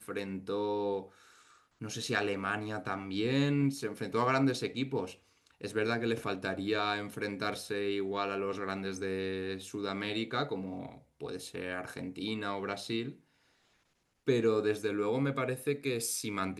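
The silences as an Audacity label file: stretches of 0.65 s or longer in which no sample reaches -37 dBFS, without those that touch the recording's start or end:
1.030000	1.820000	silence
13.100000	14.280000	silence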